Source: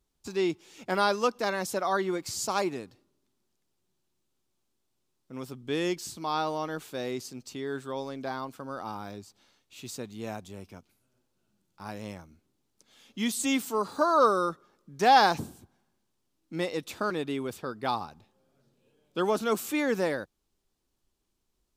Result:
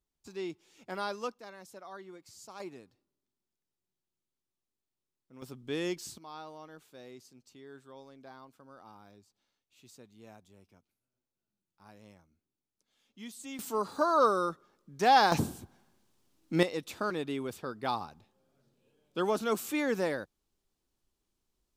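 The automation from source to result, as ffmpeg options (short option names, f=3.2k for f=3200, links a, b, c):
-af "asetnsamples=n=441:p=0,asendcmd='1.34 volume volume -19dB;2.6 volume volume -13dB;5.42 volume volume -4.5dB;6.18 volume volume -16dB;13.59 volume volume -3dB;15.32 volume volume 6dB;16.63 volume volume -3dB',volume=-10.5dB"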